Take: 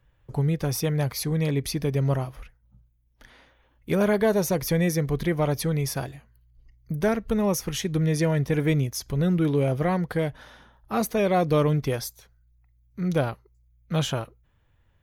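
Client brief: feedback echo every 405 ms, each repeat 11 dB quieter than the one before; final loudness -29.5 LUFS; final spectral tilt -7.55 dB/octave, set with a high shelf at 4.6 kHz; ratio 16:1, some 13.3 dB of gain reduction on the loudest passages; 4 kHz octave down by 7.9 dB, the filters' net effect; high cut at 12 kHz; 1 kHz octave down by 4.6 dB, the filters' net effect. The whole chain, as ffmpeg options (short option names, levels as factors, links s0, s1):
-af "lowpass=12000,equalizer=f=1000:t=o:g=-6.5,equalizer=f=4000:t=o:g=-8,highshelf=f=4600:g=-4.5,acompressor=threshold=0.0251:ratio=16,aecho=1:1:405|810|1215:0.282|0.0789|0.0221,volume=2.66"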